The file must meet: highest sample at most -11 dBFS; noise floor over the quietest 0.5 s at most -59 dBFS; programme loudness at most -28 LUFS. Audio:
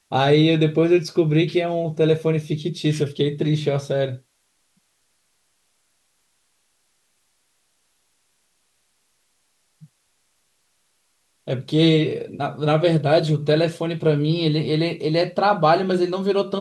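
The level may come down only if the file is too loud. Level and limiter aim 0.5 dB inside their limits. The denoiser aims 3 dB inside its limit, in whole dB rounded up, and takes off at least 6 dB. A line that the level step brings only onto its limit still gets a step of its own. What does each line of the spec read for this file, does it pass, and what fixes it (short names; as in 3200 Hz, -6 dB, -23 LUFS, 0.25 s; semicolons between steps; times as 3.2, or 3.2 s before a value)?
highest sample -5.0 dBFS: fail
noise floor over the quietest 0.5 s -67 dBFS: OK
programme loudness -20.0 LUFS: fail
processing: gain -8.5 dB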